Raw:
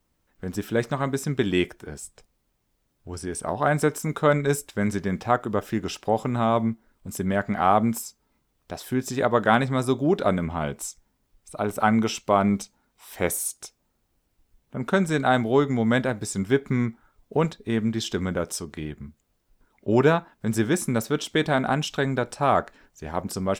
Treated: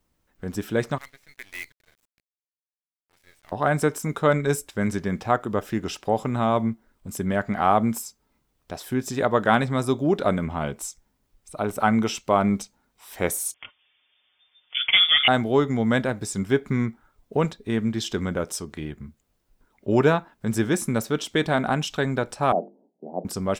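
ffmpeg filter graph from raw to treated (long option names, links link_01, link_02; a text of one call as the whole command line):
ffmpeg -i in.wav -filter_complex "[0:a]asettb=1/sr,asplit=3[link_01][link_02][link_03];[link_01]atrim=end=0.984[link_04];[link_02]atrim=start=0.98:end=3.52,asetpts=PTS-STARTPTS,afade=type=in:duration=0.004:curve=qsin,afade=type=out:start_time=2.536:duration=0.004:curve=qsin,bandpass=frequency=2100:width_type=q:width=6.7,acrusher=bits=7:dc=4:mix=0:aa=0.000001[link_05];[link_03]atrim=start=3.516[link_06];[link_04][link_05]acrossfade=duration=0.004:curve1=hsin:curve2=qsin[link_07];[link_07][link_06]acrossfade=duration=0.004:curve1=qsin:curve2=hsin,asettb=1/sr,asplit=3[link_08][link_09][link_10];[link_08]atrim=end=13.544[link_11];[link_09]atrim=start=13.54:end=15.28,asetpts=PTS-STARTPTS,afade=type=in:duration=0.004:curve=qsin,afade=type=out:start_time=1.736:duration=0.004:curve=qsin,aecho=1:1:6:0.63,atrim=end_sample=76734,asplit=2[link_12][link_13];[link_13]highpass=frequency=720:poles=1,volume=19dB,asoftclip=type=tanh:threshold=-7dB[link_14];[link_12][link_14]amix=inputs=2:normalize=0,lowpass=frequency=1500:poles=1,volume=-6dB,lowpass=frequency=3100:width_type=q:width=0.5098,lowpass=frequency=3100:width_type=q:width=0.6013,lowpass=frequency=3100:width_type=q:width=0.9,lowpass=frequency=3100:width_type=q:width=2.563,afreqshift=-3600[link_15];[link_10]atrim=start=15.276[link_16];[link_11][link_15]acrossfade=duration=0.004:curve1=hsin:curve2=qsin[link_17];[link_17][link_16]acrossfade=duration=0.004:curve1=qsin:curve2=hsin,asettb=1/sr,asplit=3[link_18][link_19][link_20];[link_18]atrim=end=22.524[link_21];[link_19]atrim=start=22.52:end=23.25,asetpts=PTS-STARTPTS,afade=type=in:duration=0.004:curve=qsin,afade=type=out:start_time=0.726:duration=0.004:curve=qsin,asuperpass=centerf=370:order=12:qfactor=0.61,bandreject=frequency=50:width_type=h:width=6,bandreject=frequency=100:width_type=h:width=6,bandreject=frequency=150:width_type=h:width=6,bandreject=frequency=200:width_type=h:width=6,bandreject=frequency=250:width_type=h:width=6,bandreject=frequency=300:width_type=h:width=6,bandreject=frequency=350:width_type=h:width=6,bandreject=frequency=400:width_type=h:width=6,bandreject=frequency=450:width_type=h:width=6[link_22];[link_20]atrim=start=23.246[link_23];[link_21][link_22]acrossfade=duration=0.004:curve1=hsin:curve2=qsin[link_24];[link_24][link_23]acrossfade=duration=0.004:curve1=qsin:curve2=hsin" out.wav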